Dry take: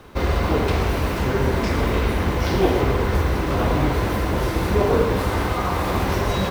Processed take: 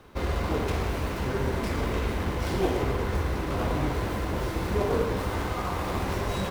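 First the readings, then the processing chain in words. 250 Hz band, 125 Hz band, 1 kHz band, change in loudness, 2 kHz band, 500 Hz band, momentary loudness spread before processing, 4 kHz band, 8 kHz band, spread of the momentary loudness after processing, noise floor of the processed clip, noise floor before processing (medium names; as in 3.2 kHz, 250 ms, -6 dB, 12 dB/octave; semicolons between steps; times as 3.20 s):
-7.5 dB, -7.5 dB, -7.5 dB, -7.5 dB, -7.5 dB, -7.5 dB, 4 LU, -7.5 dB, -6.0 dB, 4 LU, -32 dBFS, -24 dBFS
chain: tracing distortion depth 0.11 ms; trim -7.5 dB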